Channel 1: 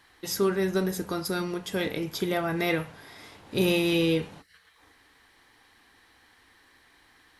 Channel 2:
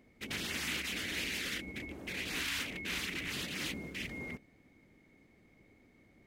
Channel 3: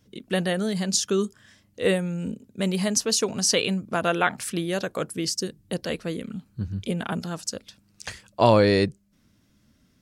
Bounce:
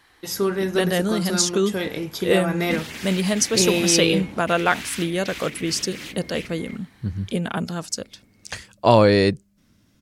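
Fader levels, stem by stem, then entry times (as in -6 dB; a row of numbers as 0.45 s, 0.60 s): +2.5 dB, +2.0 dB, +3.0 dB; 0.00 s, 2.40 s, 0.45 s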